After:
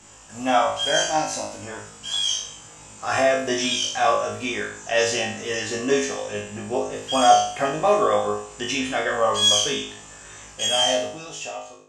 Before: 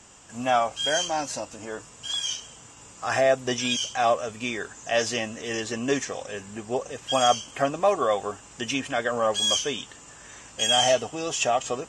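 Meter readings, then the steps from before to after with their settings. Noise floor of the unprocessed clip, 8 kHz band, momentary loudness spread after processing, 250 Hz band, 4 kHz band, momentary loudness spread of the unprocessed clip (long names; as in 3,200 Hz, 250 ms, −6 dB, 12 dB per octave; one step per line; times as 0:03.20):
−48 dBFS, +3.5 dB, 16 LU, +3.0 dB, +4.0 dB, 14 LU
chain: fade-out on the ending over 1.58 s
flutter between parallel walls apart 3.3 metres, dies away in 0.52 s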